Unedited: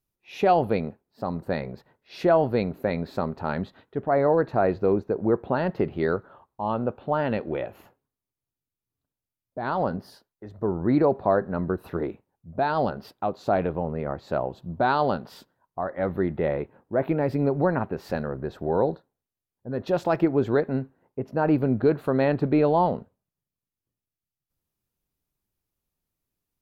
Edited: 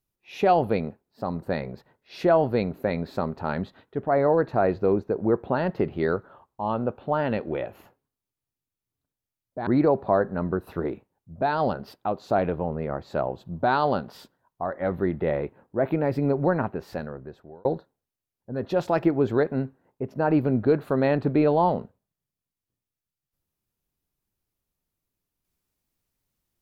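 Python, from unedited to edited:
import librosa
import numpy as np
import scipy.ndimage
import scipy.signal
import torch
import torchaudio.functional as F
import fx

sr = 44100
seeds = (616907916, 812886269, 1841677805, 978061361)

y = fx.edit(x, sr, fx.cut(start_s=9.67, length_s=1.17),
    fx.fade_out_span(start_s=17.77, length_s=1.05), tone=tone)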